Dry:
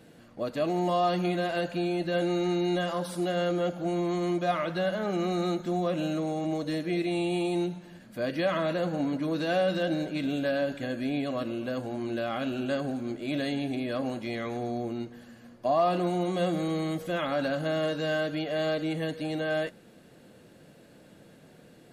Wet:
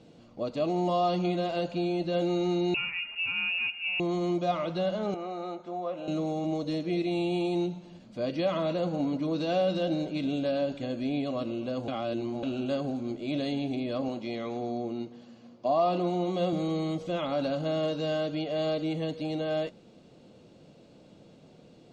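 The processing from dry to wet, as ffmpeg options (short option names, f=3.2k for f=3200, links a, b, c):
-filter_complex "[0:a]asettb=1/sr,asplit=3[a][b][c];[a]atrim=end=2.744[d];[b]atrim=start=2.74:end=4,asetpts=PTS-STARTPTS,afade=t=in:d=0.004:c=qsin,afade=t=out:st=1.256:d=0.004:c=qsin,lowpass=f=2.6k:t=q:w=0.5098,lowpass=f=2.6k:t=q:w=0.6013,lowpass=f=2.6k:t=q:w=0.9,lowpass=f=2.6k:t=q:w=2.563,afreqshift=-3000[e];[c]atrim=start=3.996[f];[d][e]acrossfade=d=0.004:c1=hsin:c2=qsin[g];[g][f]acrossfade=d=0.004:c1=qsin:c2=hsin,asettb=1/sr,asplit=3[h][i][j];[h]atrim=end=5.144[k];[i]atrim=start=5.14:end=6.08,asetpts=PTS-STARTPTS,afade=t=in:d=0.004:c=qsin,afade=t=out:st=0.936:d=0.004:c=qsin,acrossover=split=470 2100:gain=0.141 1 0.2[l][m][n];[l][m][n]amix=inputs=3:normalize=0[o];[j]atrim=start=6.076[p];[k][o]acrossfade=d=0.004:c1=hsin:c2=qsin[q];[q][p]acrossfade=d=0.004:c1=qsin:c2=hsin,asettb=1/sr,asplit=3[r][s][t];[r]atrim=end=14.084[u];[s]atrim=start=14.08:end=16.53,asetpts=PTS-STARTPTS,afade=t=in:d=0.004:c=qsin,afade=t=out:st=2.446:d=0.004:c=qsin,highpass=140,lowpass=7.4k[v];[t]atrim=start=16.526[w];[u][v]acrossfade=d=0.004:c1=hsin:c2=qsin[x];[x][w]acrossfade=d=0.004:c1=qsin:c2=hsin,asplit=3[y][z][aa];[y]atrim=end=11.882[ab];[z]atrim=start=11.878:end=12.432,asetpts=PTS-STARTPTS,areverse[ac];[aa]atrim=start=12.428[ad];[ab][ac]acrossfade=d=0.004:c1=hsin:c2=hsin[ae];[ae][ad]acrossfade=d=0.004:c1=hsin:c2=hsin,lowpass=f=6.6k:w=0.5412,lowpass=f=6.6k:w=1.3066,equalizer=f=1.7k:w=2.8:g=-14"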